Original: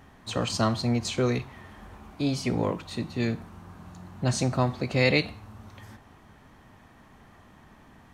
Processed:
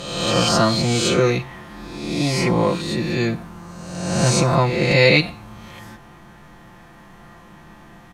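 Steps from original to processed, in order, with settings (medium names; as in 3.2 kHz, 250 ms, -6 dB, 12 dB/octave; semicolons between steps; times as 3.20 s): reverse spectral sustain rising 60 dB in 1.20 s; comb 5.8 ms; trim +5 dB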